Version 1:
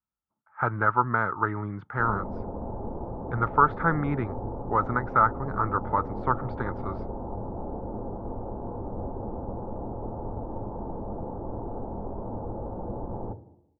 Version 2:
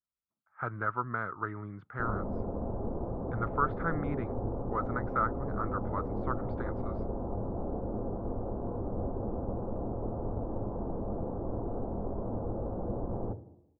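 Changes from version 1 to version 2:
speech −8.5 dB
master: add parametric band 880 Hz −10 dB 0.2 octaves

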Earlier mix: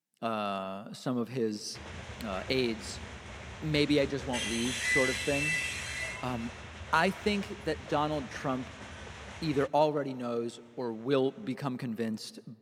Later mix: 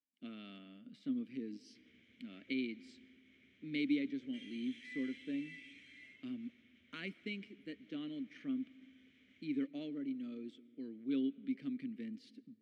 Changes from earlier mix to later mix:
background −9.0 dB
master: add formant filter i

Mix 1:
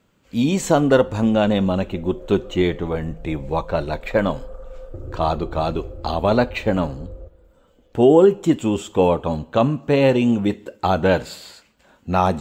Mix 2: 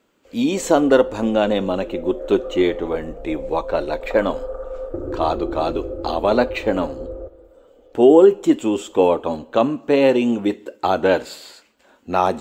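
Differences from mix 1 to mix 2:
background +9.5 dB
master: add low shelf with overshoot 210 Hz −10 dB, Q 1.5

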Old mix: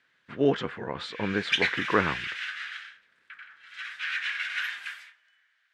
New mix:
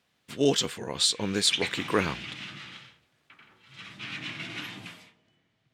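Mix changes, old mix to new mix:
speech: remove low-pass with resonance 1,600 Hz, resonance Q 1.9
background: remove high-pass with resonance 1,600 Hz, resonance Q 6.5

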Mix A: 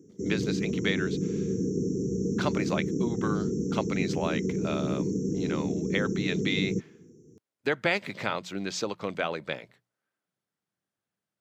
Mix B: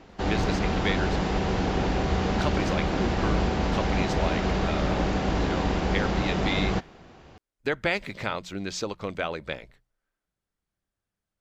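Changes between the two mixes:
background: remove linear-phase brick-wall band-stop 490–5,400 Hz
master: remove high-pass filter 120 Hz 24 dB per octave

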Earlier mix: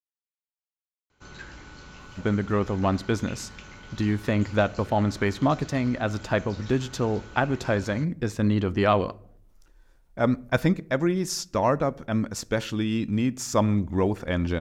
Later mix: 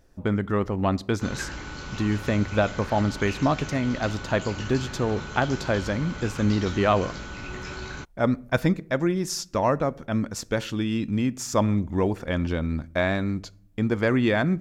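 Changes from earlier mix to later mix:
speech: entry −2.00 s
background +8.5 dB

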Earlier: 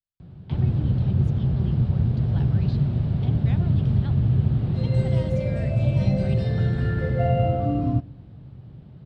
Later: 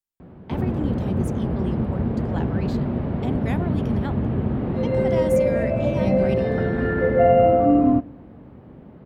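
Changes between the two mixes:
speech: remove high-frequency loss of the air 280 metres
master: add graphic EQ with 10 bands 125 Hz −10 dB, 250 Hz +10 dB, 500 Hz +8 dB, 1,000 Hz +8 dB, 2,000 Hz +7 dB, 4,000 Hz −7 dB, 8,000 Hz −5 dB

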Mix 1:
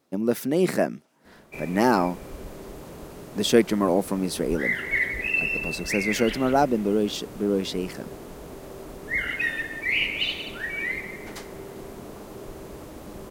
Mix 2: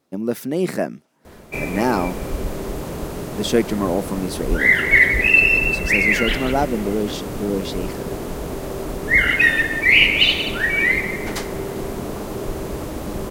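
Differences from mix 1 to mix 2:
background +11.5 dB
master: add low-shelf EQ 130 Hz +4 dB

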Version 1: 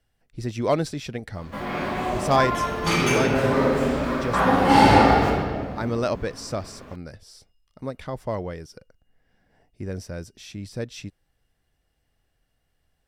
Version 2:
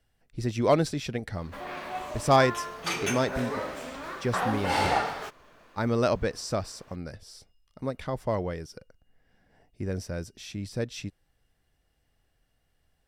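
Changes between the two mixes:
background: add low-shelf EQ 380 Hz −11.5 dB
reverb: off

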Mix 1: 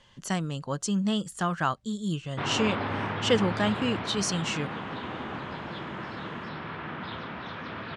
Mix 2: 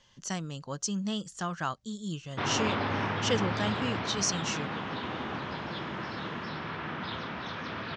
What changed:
speech −6.0 dB
master: add low-pass with resonance 6,100 Hz, resonance Q 3

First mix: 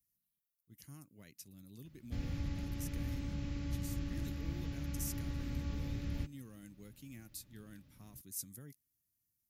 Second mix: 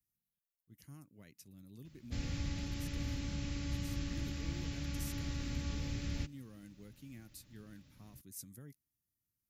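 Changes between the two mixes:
background: remove low-pass filter 1,100 Hz 6 dB per octave
master: add high-shelf EQ 3,300 Hz −6.5 dB

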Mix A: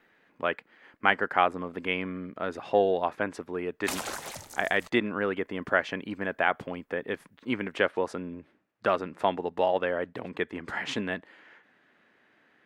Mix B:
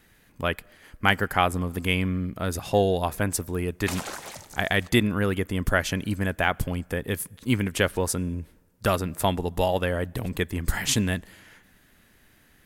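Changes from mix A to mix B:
speech: remove band-pass filter 320–2,300 Hz
reverb: on, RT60 1.8 s

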